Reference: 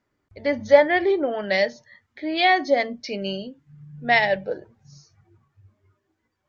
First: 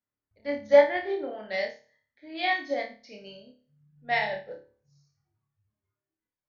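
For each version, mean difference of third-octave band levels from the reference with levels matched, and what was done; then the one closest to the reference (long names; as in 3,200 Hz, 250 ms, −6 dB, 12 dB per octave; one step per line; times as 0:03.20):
4.5 dB: parametric band 380 Hz −5 dB 0.31 octaves
flutter between parallel walls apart 4.8 metres, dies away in 0.48 s
expander for the loud parts 1.5 to 1, over −38 dBFS
level −6 dB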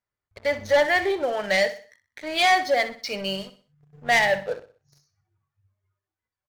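7.0 dB: parametric band 280 Hz −14 dB 1.1 octaves
leveller curve on the samples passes 3
on a send: repeating echo 62 ms, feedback 38%, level −13.5 dB
on the sum: level −7.5 dB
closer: first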